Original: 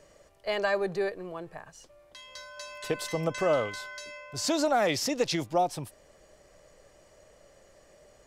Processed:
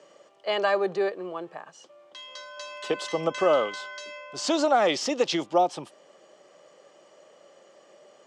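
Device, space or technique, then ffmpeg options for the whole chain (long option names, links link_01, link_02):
television speaker: -af "highpass=frequency=180:width=0.5412,highpass=frequency=180:width=1.3066,equalizer=frequency=360:width_type=q:width=4:gain=5,equalizer=frequency=540:width_type=q:width=4:gain=4,equalizer=frequency=820:width_type=q:width=4:gain=5,equalizer=frequency=1200:width_type=q:width=4:gain=7,equalizer=frequency=3100:width_type=q:width=4:gain=8,lowpass=frequency=7900:width=0.5412,lowpass=frequency=7900:width=1.3066"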